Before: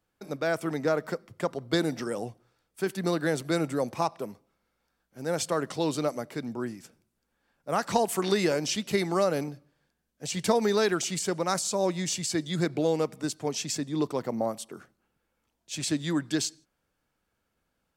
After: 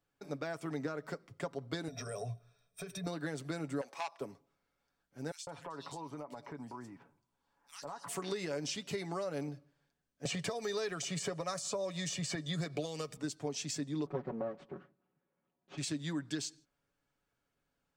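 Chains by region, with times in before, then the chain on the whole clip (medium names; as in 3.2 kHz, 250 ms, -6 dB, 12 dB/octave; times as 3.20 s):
1.88–3.07 s: rippled EQ curve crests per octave 1.6, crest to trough 14 dB + compression 10:1, threshold -33 dBFS + comb 1.6 ms, depth 95%
3.81–4.21 s: high-pass 640 Hz + transformer saturation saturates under 2.5 kHz
5.31–8.08 s: peaking EQ 950 Hz +14 dB 0.5 oct + bands offset in time highs, lows 160 ms, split 2.6 kHz + compression 5:1, threshold -37 dBFS
10.25–13.17 s: comb 1.7 ms, depth 44% + three bands compressed up and down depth 100%
14.06–15.78 s: comb filter that takes the minimum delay 5.4 ms + band-pass 200–3200 Hz + tilt EQ -3.5 dB/octave
whole clip: compression, threshold -29 dBFS; peaking EQ 12 kHz -14 dB 0.28 oct; comb 7.1 ms, depth 45%; trim -6 dB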